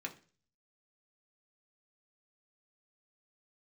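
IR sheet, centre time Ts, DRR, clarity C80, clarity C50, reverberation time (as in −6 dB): 8 ms, 1.0 dB, 20.5 dB, 15.0 dB, 0.40 s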